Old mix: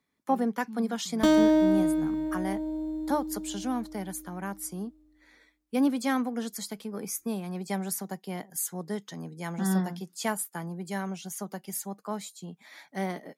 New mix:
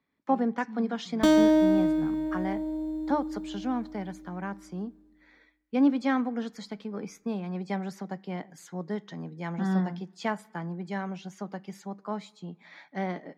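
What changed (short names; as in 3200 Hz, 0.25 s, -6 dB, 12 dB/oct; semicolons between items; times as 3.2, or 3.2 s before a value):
speech: add air absorption 190 m; reverb: on, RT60 1.2 s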